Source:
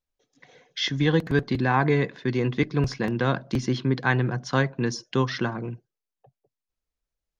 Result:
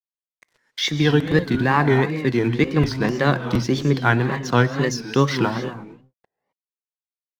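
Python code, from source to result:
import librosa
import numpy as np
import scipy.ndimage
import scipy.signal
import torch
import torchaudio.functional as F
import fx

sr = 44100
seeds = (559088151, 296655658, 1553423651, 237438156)

p1 = fx.rider(x, sr, range_db=3, speed_s=0.5)
p2 = x + F.gain(torch.from_numpy(p1), 0.5).numpy()
p3 = fx.hum_notches(p2, sr, base_hz=60, count=4)
p4 = np.sign(p3) * np.maximum(np.abs(p3) - 10.0 ** (-41.5 / 20.0), 0.0)
p5 = fx.rev_gated(p4, sr, seeds[0], gate_ms=280, shape='rising', drr_db=9.5)
p6 = fx.wow_flutter(p5, sr, seeds[1], rate_hz=2.1, depth_cents=150.0)
y = F.gain(torch.from_numpy(p6), -1.0).numpy()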